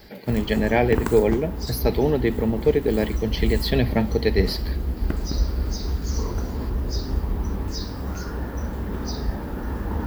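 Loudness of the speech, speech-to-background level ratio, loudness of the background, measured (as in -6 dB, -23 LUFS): -23.0 LUFS, 6.0 dB, -29.0 LUFS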